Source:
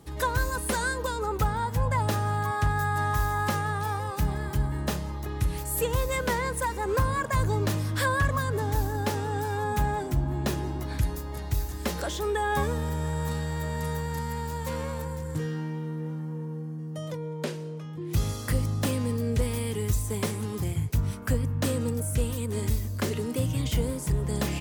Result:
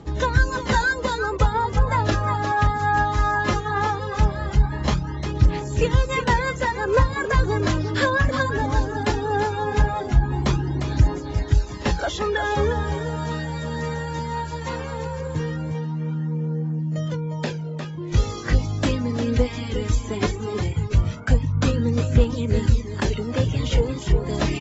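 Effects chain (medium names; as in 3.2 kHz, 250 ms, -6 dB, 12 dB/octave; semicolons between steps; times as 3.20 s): phaser 0.18 Hz, delay 3.9 ms, feedback 42%; reverse; upward compressor, threshold -33 dBFS; reverse; distance through air 52 m; on a send: delay 354 ms -8 dB; on the sum: reverb removal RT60 0.57 s; band-stop 1.1 kHz, Q 24; trim +6 dB; AAC 24 kbps 22.05 kHz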